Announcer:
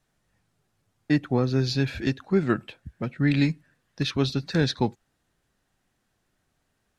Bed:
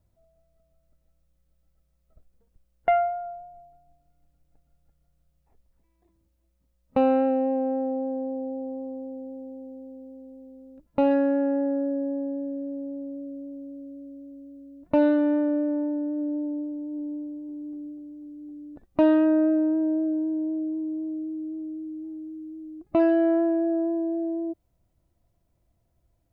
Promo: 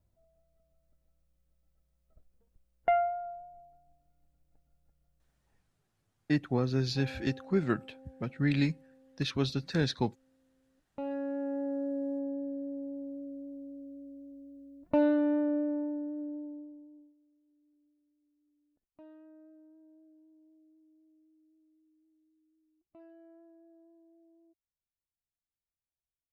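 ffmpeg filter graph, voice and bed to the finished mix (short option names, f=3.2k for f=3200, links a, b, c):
-filter_complex "[0:a]adelay=5200,volume=-6dB[a];[1:a]volume=15dB,afade=t=out:st=5.13:d=0.72:silence=0.0944061,afade=t=in:st=10.75:d=1.38:silence=0.1,afade=t=out:st=15.57:d=1.57:silence=0.0334965[b];[a][b]amix=inputs=2:normalize=0"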